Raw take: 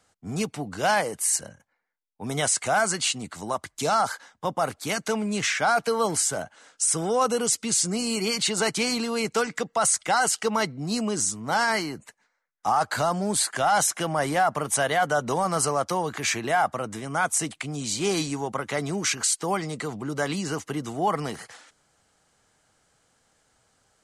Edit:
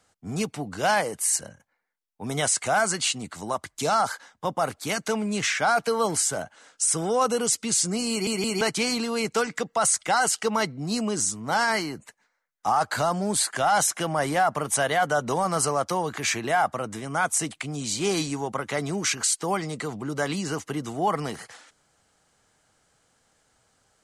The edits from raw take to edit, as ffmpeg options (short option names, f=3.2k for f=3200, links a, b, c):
-filter_complex "[0:a]asplit=4[a][b][c][d];[a]atrim=end=8.272[e];[b]atrim=start=8.098:end=8.272[f];[c]atrim=start=8.098:end=8.272[g];[d]atrim=start=8.608[h];[e][f]acrossfade=d=0.004:c1=hsin:c2=hsin[i];[i][g]acrossfade=d=0.004:c1=hsin:c2=hsin[j];[j][h]acrossfade=d=0.004:c1=hsin:c2=hsin"